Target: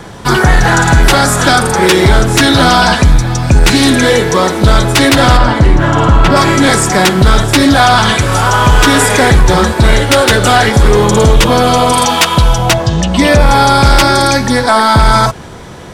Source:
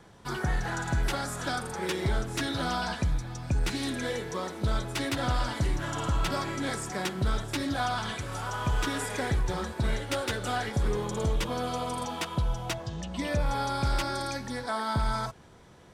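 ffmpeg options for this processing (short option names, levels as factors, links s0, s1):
-filter_complex "[0:a]asplit=3[s0][s1][s2];[s0]afade=t=out:st=5.36:d=0.02[s3];[s1]lowpass=f=1500:p=1,afade=t=in:st=5.36:d=0.02,afade=t=out:st=6.35:d=0.02[s4];[s2]afade=t=in:st=6.35:d=0.02[s5];[s3][s4][s5]amix=inputs=3:normalize=0,asettb=1/sr,asplit=3[s6][s7][s8];[s6]atrim=end=11.924[s9];[s7]atrim=start=11.92:end=12.58,asetpts=PTS-STARTPTS,afade=t=in:d=0.004:c=qsin,afade=t=out:st=0.656:d=0.004:c=qsin,tiltshelf=f=970:g=-4[s10];[s8]atrim=start=12.576[s11];[s9][s10]acrossfade=d=0.004:c1=hsin:c2=qsin[s12];[s12][s11]acrossfade=d=0.004:c1=qsin:c2=hsin,apsyclip=20,volume=0.841"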